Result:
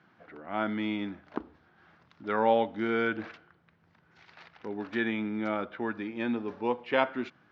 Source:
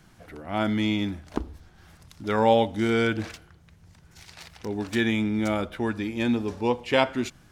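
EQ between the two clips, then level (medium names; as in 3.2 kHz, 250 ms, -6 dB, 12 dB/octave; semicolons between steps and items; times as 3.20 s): Gaussian low-pass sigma 2.4 samples; high-pass 200 Hz 12 dB/octave; peaking EQ 1.4 kHz +5 dB 0.97 oct; -5.0 dB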